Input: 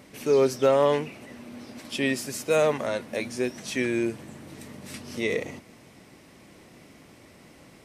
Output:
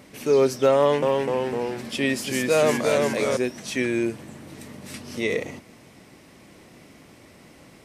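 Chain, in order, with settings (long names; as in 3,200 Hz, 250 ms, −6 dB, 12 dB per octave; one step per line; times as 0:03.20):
0:00.77–0:03.37: delay with pitch and tempo change per echo 252 ms, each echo −1 semitone, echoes 3
level +2 dB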